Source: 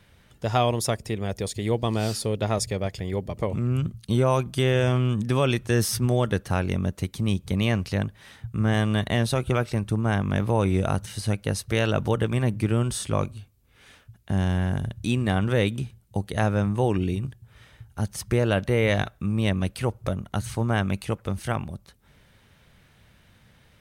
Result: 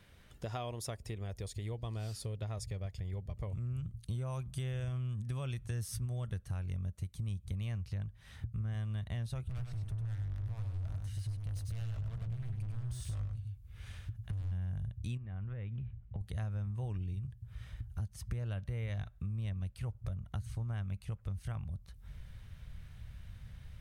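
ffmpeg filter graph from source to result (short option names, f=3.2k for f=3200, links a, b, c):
-filter_complex "[0:a]asettb=1/sr,asplit=3[a][b][c];[a]atrim=end=3.474[d];[b]atrim=start=3.47:end=7.78,asetpts=PTS-STARTPTS,afade=t=in:d=0.004:c=qsin,afade=t=out:st=4.306:d=0.004:c=qsin,equalizer=f=9.3k:t=o:w=1:g=5.5,bandreject=f=5.1k:w=27[e];[c]atrim=start=7.776[f];[d][e]acrossfade=d=0.004:c1=hsin:c2=qsin[g];[g][f]acrossfade=d=0.004:c1=qsin:c2=hsin,asettb=1/sr,asplit=3[h][i][j];[h]atrim=end=9.454[k];[i]atrim=start=9.45:end=14.52,asetpts=PTS-STARTPTS,afade=t=in:d=0.004:c=qsin,afade=t=out:st=5.066:d=0.004:c=qsin,equalizer=f=95:w=1.9:g=7,volume=28dB,asoftclip=hard,volume=-28dB,aecho=1:1:99:0.596,atrim=end_sample=223587[l];[j]atrim=start=14.516[m];[k][l]acrossfade=d=0.004:c1=hsin:c2=qsin[n];[n][m]acrossfade=d=0.004:c1=qsin:c2=hsin,asettb=1/sr,asplit=3[o][p][q];[o]atrim=end=15.174[r];[p]atrim=start=15.17:end=16.21,asetpts=PTS-STARTPTS,afade=t=in:d=0.004:c=qsin,afade=t=out:st=1.036:d=0.004:c=qsin,lowpass=f=2.6k:w=0.5412,lowpass=f=2.6k:w=1.3066,acompressor=threshold=-31dB:ratio=8:attack=3.2:release=140:knee=1:detection=peak[s];[q]atrim=start=16.206[t];[r][s]acrossfade=d=0.004:c1=hsin:c2=qsin[u];[u][t]acrossfade=d=0.004:c1=qsin:c2=hsin,bandreject=f=870:w=19,asubboost=boost=12:cutoff=89,acompressor=threshold=-35dB:ratio=4,volume=-4.5dB"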